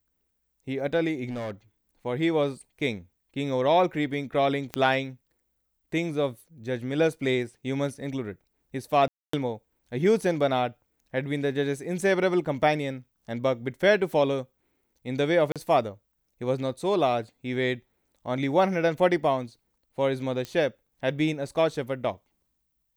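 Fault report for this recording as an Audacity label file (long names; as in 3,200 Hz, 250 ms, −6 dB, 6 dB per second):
1.290000	1.520000	clipping −29.5 dBFS
4.740000	4.740000	click −13 dBFS
9.080000	9.330000	drop-out 254 ms
15.520000	15.560000	drop-out 37 ms
20.450000	20.450000	click −19 dBFS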